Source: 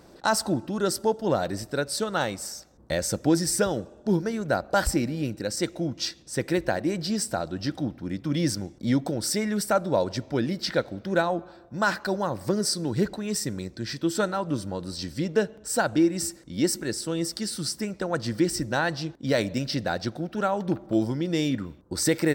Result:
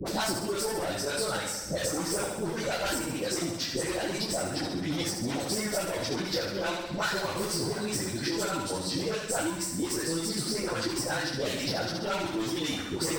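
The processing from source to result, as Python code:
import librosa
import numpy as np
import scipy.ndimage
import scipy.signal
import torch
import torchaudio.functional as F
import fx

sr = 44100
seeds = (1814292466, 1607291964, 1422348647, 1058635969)

y = fx.spec_dilate(x, sr, span_ms=60)
y = 10.0 ** (-23.0 / 20.0) * np.tanh(y / 10.0 ** (-23.0 / 20.0))
y = fx.dispersion(y, sr, late='highs', ms=132.0, hz=720.0)
y = fx.dereverb_blind(y, sr, rt60_s=0.63)
y = fx.peak_eq(y, sr, hz=130.0, db=-3.0, octaves=1.8)
y = fx.echo_feedback(y, sr, ms=109, feedback_pct=53, wet_db=-4.5)
y = fx.dynamic_eq(y, sr, hz=230.0, q=3.2, threshold_db=-41.0, ratio=4.0, max_db=-5)
y = fx.stretch_vocoder_free(y, sr, factor=0.59)
y = fx.band_squash(y, sr, depth_pct=100)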